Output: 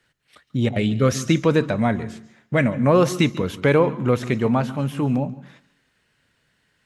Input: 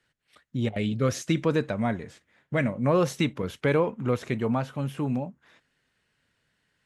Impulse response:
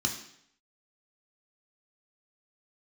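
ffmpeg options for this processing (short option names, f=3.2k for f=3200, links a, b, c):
-filter_complex "[0:a]asplit=2[a][b];[1:a]atrim=start_sample=2205,adelay=140[c];[b][c]afir=irnorm=-1:irlink=0,volume=-23.5dB[d];[a][d]amix=inputs=2:normalize=0,volume=6.5dB"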